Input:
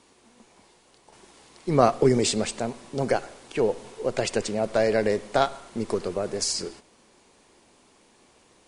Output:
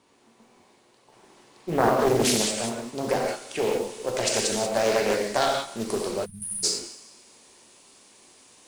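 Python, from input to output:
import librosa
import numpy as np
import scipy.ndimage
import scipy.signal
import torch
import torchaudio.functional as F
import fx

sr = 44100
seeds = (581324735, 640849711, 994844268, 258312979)

y = fx.low_shelf(x, sr, hz=73.0, db=-8.0)
y = fx.echo_thinned(y, sr, ms=212, feedback_pct=32, hz=420.0, wet_db=-20)
y = fx.rev_gated(y, sr, seeds[0], gate_ms=210, shape='flat', drr_db=-1.5)
y = fx.spec_erase(y, sr, start_s=6.25, length_s=0.39, low_hz=230.0, high_hz=9000.0)
y = fx.high_shelf(y, sr, hz=3400.0, db=fx.steps((0.0, -5.5), (1.99, 6.0), (3.27, 11.5)))
y = fx.mod_noise(y, sr, seeds[1], snr_db=23)
y = fx.doppler_dist(y, sr, depth_ms=0.59)
y = y * librosa.db_to_amplitude(-4.0)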